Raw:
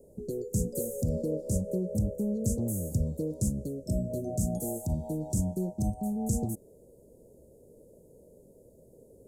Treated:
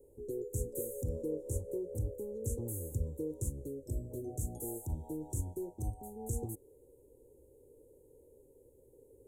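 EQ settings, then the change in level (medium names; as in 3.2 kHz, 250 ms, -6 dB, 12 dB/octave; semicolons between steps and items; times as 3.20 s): static phaser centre 970 Hz, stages 8; -3.0 dB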